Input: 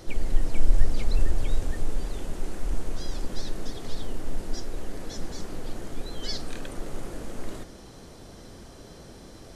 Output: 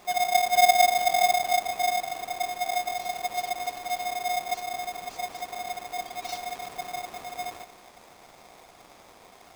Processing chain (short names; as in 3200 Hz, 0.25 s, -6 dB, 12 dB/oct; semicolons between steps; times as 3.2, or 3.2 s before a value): Schroeder reverb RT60 3.8 s, combs from 32 ms, DRR 12 dB; vibrato 0.94 Hz 8.5 cents; polarity switched at an audio rate 720 Hz; gain -7 dB